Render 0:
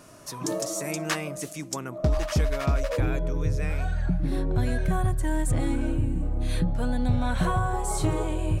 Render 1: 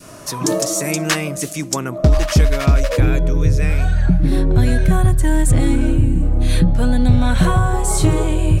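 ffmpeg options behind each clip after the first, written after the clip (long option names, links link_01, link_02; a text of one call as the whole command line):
ffmpeg -i in.wav -af "adynamicequalizer=threshold=0.00708:dfrequency=840:dqfactor=0.75:tfrequency=840:tqfactor=0.75:attack=5:release=100:ratio=0.375:range=3:mode=cutabove:tftype=bell,acontrast=89,volume=4.5dB" out.wav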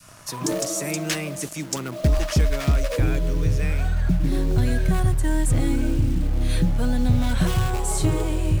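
ffmpeg -i in.wav -filter_complex "[0:a]acrossover=split=200|720|1600[link_01][link_02][link_03][link_04];[link_02]acrusher=bits=5:mix=0:aa=0.000001[link_05];[link_03]aeval=exprs='(mod(15.8*val(0)+1,2)-1)/15.8':channel_layout=same[link_06];[link_01][link_05][link_06][link_04]amix=inputs=4:normalize=0,volume=-6.5dB" out.wav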